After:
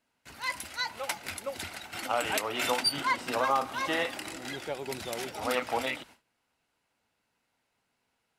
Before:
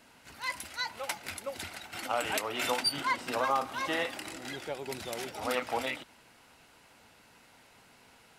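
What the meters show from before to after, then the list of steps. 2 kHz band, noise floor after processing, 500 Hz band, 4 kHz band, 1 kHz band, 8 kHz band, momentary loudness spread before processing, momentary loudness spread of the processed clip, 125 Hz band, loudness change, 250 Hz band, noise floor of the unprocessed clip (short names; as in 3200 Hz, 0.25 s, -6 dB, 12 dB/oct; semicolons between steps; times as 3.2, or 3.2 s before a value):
+2.0 dB, -79 dBFS, +2.0 dB, +2.0 dB, +2.0 dB, +2.0 dB, 11 LU, 11 LU, +2.0 dB, +2.0 dB, +2.0 dB, -60 dBFS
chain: gate with hold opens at -46 dBFS; gain +2 dB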